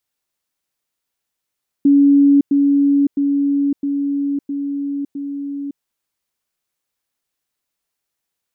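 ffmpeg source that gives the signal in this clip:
-f lavfi -i "aevalsrc='pow(10,(-7.5-3*floor(t/0.66))/20)*sin(2*PI*282*t)*clip(min(mod(t,0.66),0.56-mod(t,0.66))/0.005,0,1)':d=3.96:s=44100"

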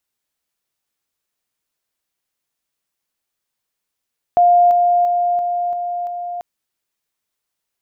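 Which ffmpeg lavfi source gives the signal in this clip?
-f lavfi -i "aevalsrc='pow(10,(-8-3*floor(t/0.34))/20)*sin(2*PI*704*t)':d=2.04:s=44100"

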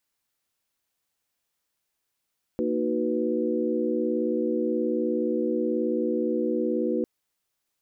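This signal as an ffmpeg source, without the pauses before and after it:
-f lavfi -i "aevalsrc='0.0376*(sin(2*PI*233.08*t)+sin(2*PI*311.13*t)+sin(2*PI*369.99*t)+sin(2*PI*493.88*t))':d=4.45:s=44100"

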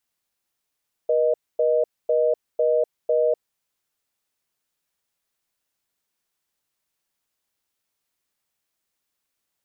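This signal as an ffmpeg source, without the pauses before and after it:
-f lavfi -i "aevalsrc='0.106*(sin(2*PI*480*t)+sin(2*PI*620*t))*clip(min(mod(t,0.5),0.25-mod(t,0.5))/0.005,0,1)':d=2.3:s=44100"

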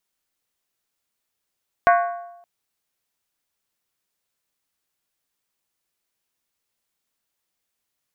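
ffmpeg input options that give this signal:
-f lavfi -i "aevalsrc='0.282*pow(10,-3*t/0.9)*sin(2*PI*696*t)+0.178*pow(10,-3*t/0.713)*sin(2*PI*1109.4*t)+0.112*pow(10,-3*t/0.616)*sin(2*PI*1486.7*t)+0.0708*pow(10,-3*t/0.594)*sin(2*PI*1598*t)+0.0447*pow(10,-3*t/0.553)*sin(2*PI*1846.5*t)+0.0282*pow(10,-3*t/0.527)*sin(2*PI*2030.9*t)+0.0178*pow(10,-3*t/0.507)*sin(2*PI*2196.6*t)+0.0112*pow(10,-3*t/0.481)*sin(2*PI*2436.7*t)':d=0.57:s=44100"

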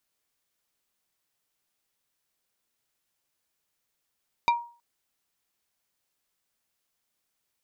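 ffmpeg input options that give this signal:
-f lavfi -i "aevalsrc='0.158*pow(10,-3*t/0.39)*sin(2*PI*946*t)+0.0794*pow(10,-3*t/0.13)*sin(2*PI*2365*t)+0.0398*pow(10,-3*t/0.074)*sin(2*PI*3784*t)+0.02*pow(10,-3*t/0.057)*sin(2*PI*4730*t)+0.01*pow(10,-3*t/0.041)*sin(2*PI*6149*t)':d=0.32:s=44100"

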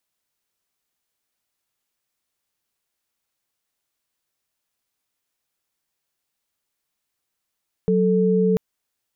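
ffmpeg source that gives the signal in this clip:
-f lavfi -i "aevalsrc='0.126*(sin(2*PI*185*t)+sin(2*PI*440*t))':d=0.69:s=44100"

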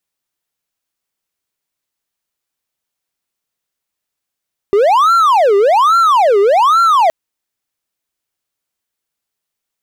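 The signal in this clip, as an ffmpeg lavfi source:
-f lavfi -i "aevalsrc='0.562*(1-4*abs(mod((882.5*t-487.5/(2*PI*1.2)*sin(2*PI*1.2*t))+0.25,1)-0.5))':d=2.37:s=44100"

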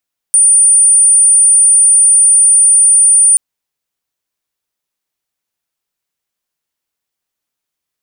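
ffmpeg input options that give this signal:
-f lavfi -i "aevalsrc='0.631*sin(2*PI*9310*t)':d=3.03:s=44100"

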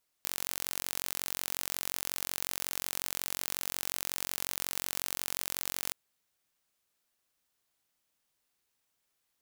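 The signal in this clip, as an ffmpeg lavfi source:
-f lavfi -i "aevalsrc='0.447*eq(mod(n,969),0)':d=5.68:s=44100"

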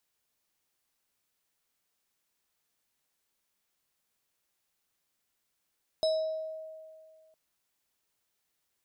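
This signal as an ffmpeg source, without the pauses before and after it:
-f lavfi -i "aevalsrc='0.0708*pow(10,-3*t/2.08)*sin(2*PI*634*t+0.58*pow(10,-3*t/0.84)*sin(2*PI*7.16*634*t))':d=1.31:s=44100"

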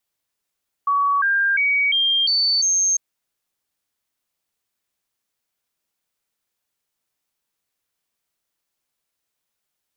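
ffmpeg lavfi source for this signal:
-f lavfi -i "aevalsrc='0.168*clip(min(mod(t,0.35),0.35-mod(t,0.35))/0.005,0,1)*sin(2*PI*1130*pow(2,floor(t/0.35)/2)*mod(t,0.35))':d=2.1:s=44100"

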